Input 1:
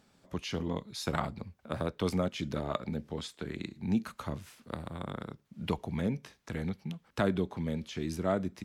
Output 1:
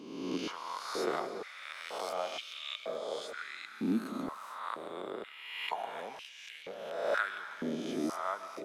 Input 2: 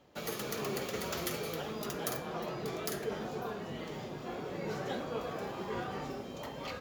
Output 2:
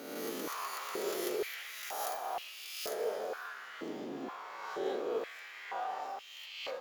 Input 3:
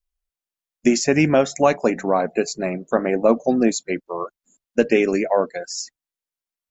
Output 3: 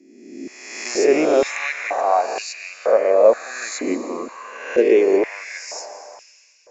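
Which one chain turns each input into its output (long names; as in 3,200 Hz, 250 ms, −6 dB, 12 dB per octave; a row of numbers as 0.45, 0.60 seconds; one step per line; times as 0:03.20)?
peak hold with a rise ahead of every peak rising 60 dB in 1.27 s
comb and all-pass reverb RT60 3.1 s, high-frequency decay 0.95×, pre-delay 95 ms, DRR 9.5 dB
high-pass on a step sequencer 2.1 Hz 280–2,800 Hz
level −7.5 dB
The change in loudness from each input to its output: −2.0, −0.5, +1.5 LU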